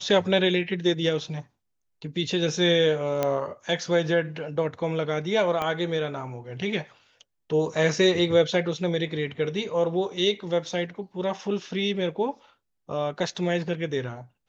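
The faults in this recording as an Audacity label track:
3.230000	3.230000	click −11 dBFS
5.620000	5.620000	click −15 dBFS

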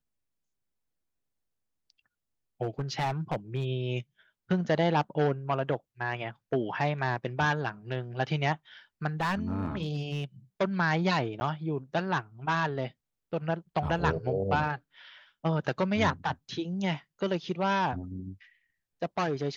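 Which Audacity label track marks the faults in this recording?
2.620000	3.660000	clipping −25 dBFS
9.200000	10.240000	clipping −25 dBFS
11.400000	11.410000	drop-out 10 ms

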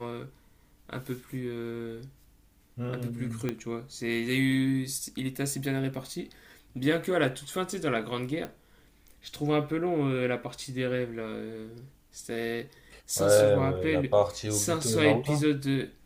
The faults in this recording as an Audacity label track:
3.490000	3.490000	click −17 dBFS
8.450000	8.450000	click −22 dBFS

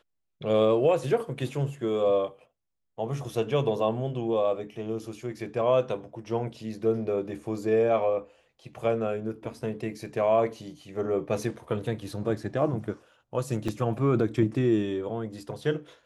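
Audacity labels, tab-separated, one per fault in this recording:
13.680000	13.680000	drop-out 4.7 ms

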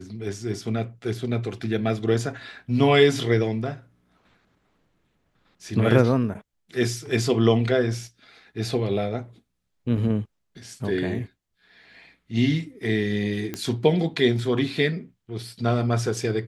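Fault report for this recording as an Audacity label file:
13.540000	13.540000	click −14 dBFS

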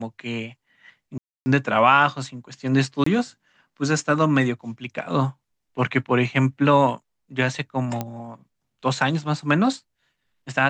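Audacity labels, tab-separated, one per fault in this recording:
1.180000	1.460000	drop-out 280 ms
3.040000	3.060000	drop-out 24 ms
8.010000	8.010000	click −12 dBFS

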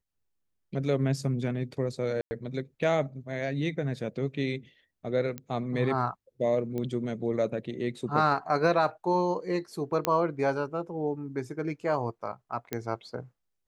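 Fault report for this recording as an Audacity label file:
2.210000	2.310000	drop-out 100 ms
5.380000	5.380000	click −22 dBFS
6.780000	6.780000	click −22 dBFS
10.050000	10.050000	click −10 dBFS
12.730000	12.730000	click −15 dBFS

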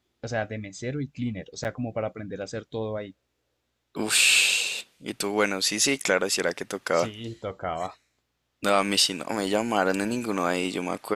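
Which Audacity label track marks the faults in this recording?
1.640000	1.650000	drop-out 9 ms

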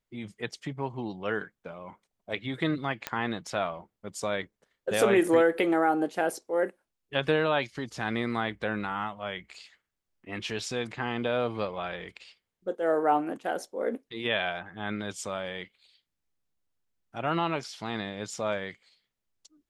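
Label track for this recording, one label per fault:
3.070000	3.070000	click −13 dBFS

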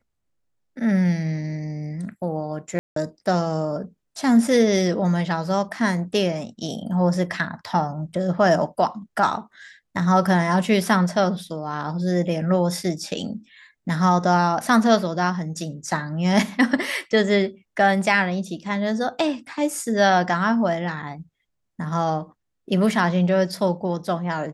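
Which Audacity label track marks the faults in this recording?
2.790000	2.960000	drop-out 173 ms

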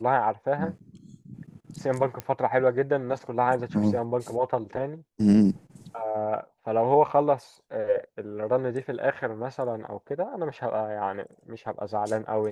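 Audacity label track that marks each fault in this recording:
2.200000	2.200000	click −16 dBFS

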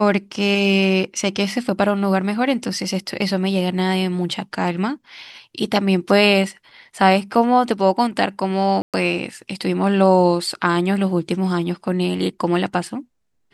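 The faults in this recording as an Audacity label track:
8.820000	8.940000	drop-out 117 ms

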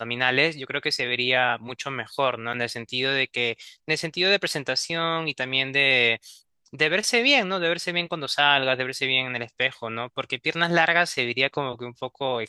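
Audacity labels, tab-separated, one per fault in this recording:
2.530000	2.540000	drop-out 6.6 ms

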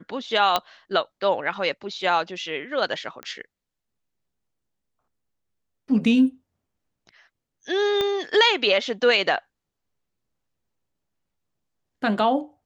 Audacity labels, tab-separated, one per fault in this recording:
0.560000	0.560000	click −6 dBFS
3.230000	3.230000	click −20 dBFS
8.010000	8.010000	click −12 dBFS

